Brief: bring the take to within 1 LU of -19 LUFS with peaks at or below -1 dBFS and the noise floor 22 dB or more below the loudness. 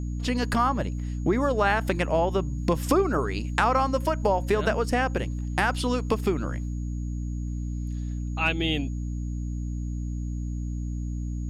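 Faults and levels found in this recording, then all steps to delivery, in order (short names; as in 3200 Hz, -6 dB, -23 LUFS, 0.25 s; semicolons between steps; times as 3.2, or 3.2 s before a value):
hum 60 Hz; harmonics up to 300 Hz; hum level -28 dBFS; steady tone 6700 Hz; tone level -56 dBFS; loudness -27.0 LUFS; peak -6.5 dBFS; loudness target -19.0 LUFS
-> de-hum 60 Hz, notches 5; notch 6700 Hz, Q 30; gain +8 dB; limiter -1 dBFS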